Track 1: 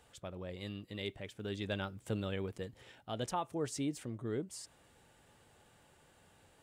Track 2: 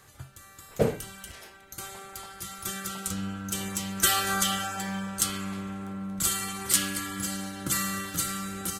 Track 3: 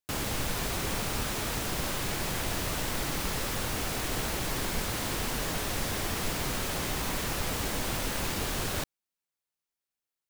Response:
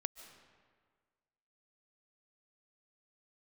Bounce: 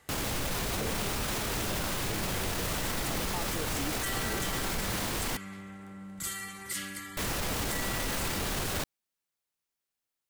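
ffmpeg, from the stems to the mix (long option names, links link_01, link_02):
-filter_complex "[0:a]volume=0dB[link_01];[1:a]equalizer=frequency=2000:width=5.9:gain=11.5,volume=-9.5dB[link_02];[2:a]volume=2dB,asplit=3[link_03][link_04][link_05];[link_03]atrim=end=5.37,asetpts=PTS-STARTPTS,afade=type=out:start_time=5.366:duration=0.004:curve=hsin[link_06];[link_04]atrim=start=5.37:end=7.17,asetpts=PTS-STARTPTS,volume=0[link_07];[link_05]atrim=start=7.17,asetpts=PTS-STARTPTS,afade=type=in:duration=0.004:curve=hsin[link_08];[link_06][link_07][link_08]concat=n=3:v=0:a=1[link_09];[link_01][link_02][link_09]amix=inputs=3:normalize=0,alimiter=limit=-23dB:level=0:latency=1:release=15"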